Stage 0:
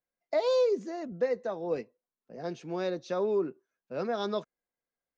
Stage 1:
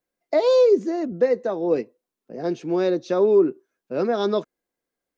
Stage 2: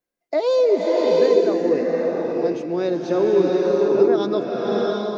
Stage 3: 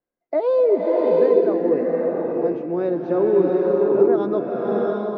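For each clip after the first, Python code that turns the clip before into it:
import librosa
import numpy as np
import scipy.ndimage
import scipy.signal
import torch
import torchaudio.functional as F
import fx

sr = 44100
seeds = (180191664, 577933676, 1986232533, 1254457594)

y1 = fx.peak_eq(x, sr, hz=330.0, db=8.0, octaves=1.0)
y1 = F.gain(torch.from_numpy(y1), 6.0).numpy()
y2 = fx.rev_bloom(y1, sr, seeds[0], attack_ms=730, drr_db=-3.0)
y2 = F.gain(torch.from_numpy(y2), -1.5).numpy()
y3 = scipy.signal.sosfilt(scipy.signal.butter(2, 1500.0, 'lowpass', fs=sr, output='sos'), y2)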